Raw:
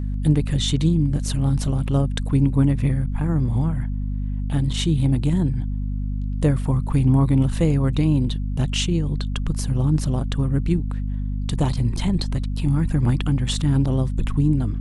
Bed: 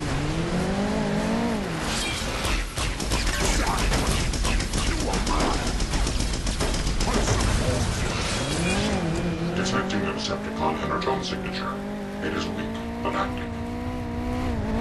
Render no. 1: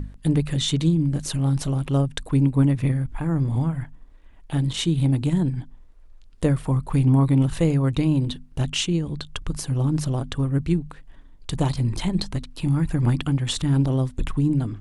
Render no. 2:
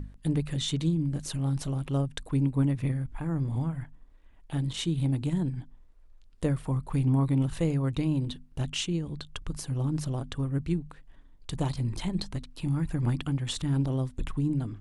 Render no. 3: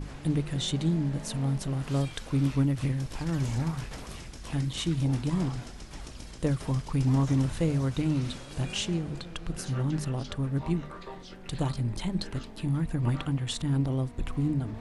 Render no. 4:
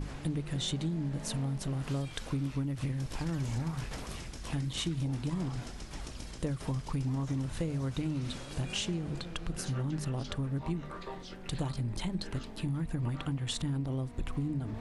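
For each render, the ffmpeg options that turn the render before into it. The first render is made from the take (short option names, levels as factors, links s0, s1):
-af "bandreject=f=50:t=h:w=6,bandreject=f=100:t=h:w=6,bandreject=f=150:t=h:w=6,bandreject=f=200:t=h:w=6,bandreject=f=250:t=h:w=6"
-af "volume=0.447"
-filter_complex "[1:a]volume=0.126[s0];[0:a][s0]amix=inputs=2:normalize=0"
-af "acompressor=threshold=0.0316:ratio=6"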